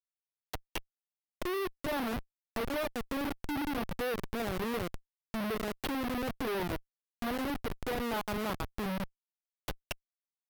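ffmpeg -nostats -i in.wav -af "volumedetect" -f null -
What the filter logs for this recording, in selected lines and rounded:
mean_volume: -36.6 dB
max_volume: -24.5 dB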